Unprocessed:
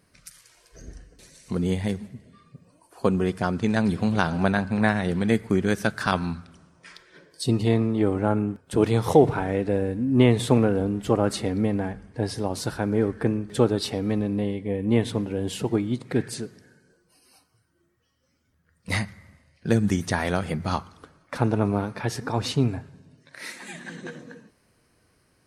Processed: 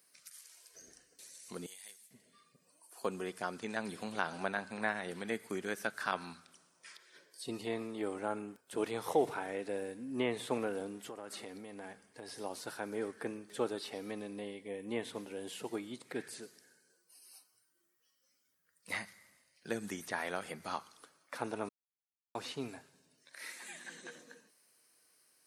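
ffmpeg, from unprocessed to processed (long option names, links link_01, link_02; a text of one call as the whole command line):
ffmpeg -i in.wav -filter_complex "[0:a]asettb=1/sr,asplit=3[link_01][link_02][link_03];[link_01]atrim=end=1.664[link_04];[link_02]atrim=start=1.66:end=2.11,asetpts=PTS-STARTPTS,afade=type=in:duration=0.004:curve=qsin,afade=type=out:start_time=0.446:duration=0.004:curve=qsin,aderivative[link_05];[link_03]atrim=start=2.106[link_06];[link_04][link_05]acrossfade=duration=0.004:curve1=hsin:curve2=qsin[link_07];[link_07][link_06]acrossfade=duration=0.004:curve1=qsin:curve2=hsin,asettb=1/sr,asplit=3[link_08][link_09][link_10];[link_08]atrim=end=10.974[link_11];[link_09]atrim=start=10.97:end=12.28,asetpts=PTS-STARTPTS,afade=type=in:duration=0.004:curve=qsin,afade=type=out:start_time=1.306:duration=0.004:curve=qsin,acompressor=threshold=-25dB:ratio=16:attack=3.2:release=140:knee=1:detection=peak[link_12];[link_10]atrim=start=12.276[link_13];[link_11][link_12]acrossfade=duration=0.004:curve1=hsin:curve2=qsin[link_14];[link_14][link_13]acrossfade=duration=0.004:curve1=qsin:curve2=hsin,asplit=3[link_15][link_16][link_17];[link_15]atrim=end=21.69,asetpts=PTS-STARTPTS,afade=type=out:start_time=21.686:duration=0.004:curve=hsin[link_18];[link_16]atrim=start=21.69:end=22.35,asetpts=PTS-STARTPTS,volume=0[link_19];[link_17]atrim=start=22.35,asetpts=PTS-STARTPTS,afade=type=in:duration=0.004:curve=hsin[link_20];[link_18][link_19][link_20]concat=n=3:v=0:a=1,equalizer=frequency=340:width=0.36:gain=9.5,acrossover=split=2700[link_21][link_22];[link_22]acompressor=threshold=-49dB:ratio=4:attack=1:release=60[link_23];[link_21][link_23]amix=inputs=2:normalize=0,aderivative,volume=1.5dB" out.wav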